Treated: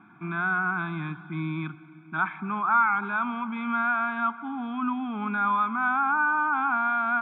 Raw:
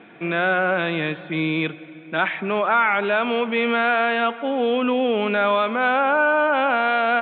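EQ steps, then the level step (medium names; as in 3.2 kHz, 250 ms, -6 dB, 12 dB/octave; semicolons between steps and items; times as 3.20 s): distance through air 65 m; static phaser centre 1.2 kHz, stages 4; static phaser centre 2.8 kHz, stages 8; 0.0 dB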